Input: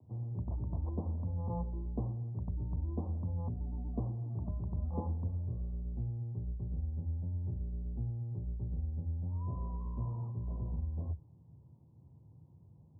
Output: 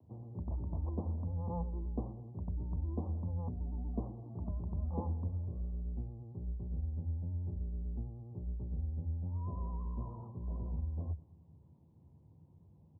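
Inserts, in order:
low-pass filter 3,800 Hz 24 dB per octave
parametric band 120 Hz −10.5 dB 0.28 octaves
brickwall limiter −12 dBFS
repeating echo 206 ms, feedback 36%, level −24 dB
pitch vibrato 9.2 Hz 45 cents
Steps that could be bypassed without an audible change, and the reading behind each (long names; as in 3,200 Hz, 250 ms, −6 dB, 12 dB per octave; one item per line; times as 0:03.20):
low-pass filter 3,800 Hz: nothing at its input above 360 Hz
brickwall limiter −12 dBFS: peak of its input −23.5 dBFS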